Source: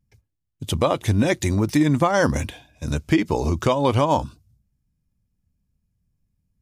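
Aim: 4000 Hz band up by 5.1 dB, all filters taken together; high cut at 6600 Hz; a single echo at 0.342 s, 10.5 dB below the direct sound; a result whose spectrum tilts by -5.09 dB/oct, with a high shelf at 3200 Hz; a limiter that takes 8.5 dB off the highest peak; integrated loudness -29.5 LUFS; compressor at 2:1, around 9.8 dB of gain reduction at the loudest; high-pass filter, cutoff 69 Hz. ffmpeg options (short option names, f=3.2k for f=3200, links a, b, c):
-af "highpass=69,lowpass=6.6k,highshelf=f=3.2k:g=3.5,equalizer=f=4k:t=o:g=4.5,acompressor=threshold=-32dB:ratio=2,alimiter=limit=-21dB:level=0:latency=1,aecho=1:1:342:0.299,volume=3dB"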